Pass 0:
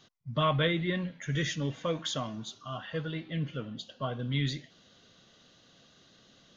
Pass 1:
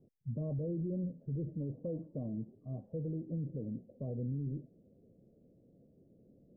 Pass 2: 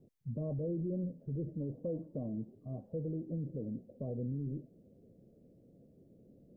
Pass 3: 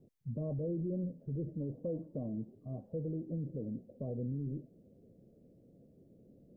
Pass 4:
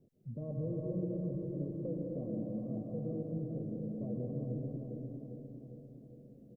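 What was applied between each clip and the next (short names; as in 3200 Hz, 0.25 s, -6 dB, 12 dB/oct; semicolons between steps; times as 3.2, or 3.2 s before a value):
steep low-pass 530 Hz 36 dB/oct; limiter -32.5 dBFS, peak gain reduction 11.5 dB; gain +1.5 dB
dynamic EQ 120 Hz, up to -4 dB, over -47 dBFS, Q 0.75; gain +2.5 dB
nothing audible
on a send: feedback echo 0.403 s, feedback 58%, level -6 dB; on the sum: plate-style reverb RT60 2.9 s, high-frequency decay 0.8×, pre-delay 0.11 s, DRR -1.5 dB; gain -4 dB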